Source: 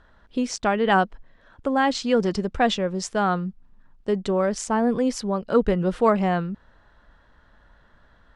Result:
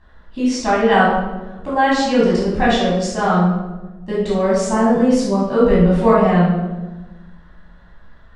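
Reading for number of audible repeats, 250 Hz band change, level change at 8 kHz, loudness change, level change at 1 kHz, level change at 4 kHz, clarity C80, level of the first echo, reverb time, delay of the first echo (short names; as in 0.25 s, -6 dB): none, +8.0 dB, +3.5 dB, +7.0 dB, +6.5 dB, +5.0 dB, 4.0 dB, none, 1.2 s, none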